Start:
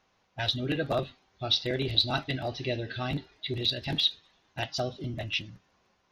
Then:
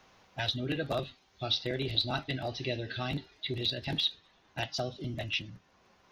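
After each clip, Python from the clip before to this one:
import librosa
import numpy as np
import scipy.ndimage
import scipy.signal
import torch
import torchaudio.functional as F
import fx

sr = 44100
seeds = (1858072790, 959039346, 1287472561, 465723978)

y = fx.band_squash(x, sr, depth_pct=40)
y = y * librosa.db_to_amplitude(-3.0)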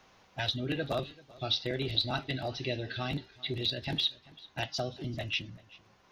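y = x + 10.0 ** (-22.0 / 20.0) * np.pad(x, (int(389 * sr / 1000.0), 0))[:len(x)]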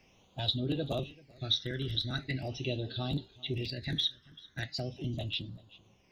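y = fx.phaser_stages(x, sr, stages=12, low_hz=770.0, high_hz=2000.0, hz=0.41, feedback_pct=40)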